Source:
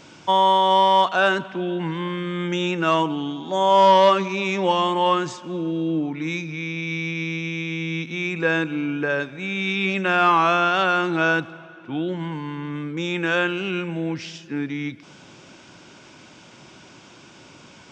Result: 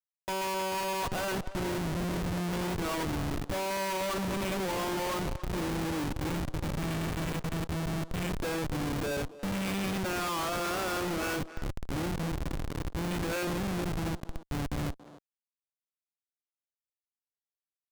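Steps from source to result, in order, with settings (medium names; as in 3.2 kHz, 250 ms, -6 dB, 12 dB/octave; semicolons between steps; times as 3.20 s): single-diode clipper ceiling -15.5 dBFS; on a send: echo that smears into a reverb 474 ms, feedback 71%, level -15 dB; on the sum: Schmitt trigger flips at -24 dBFS; speakerphone echo 280 ms, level -10 dB; trim -8 dB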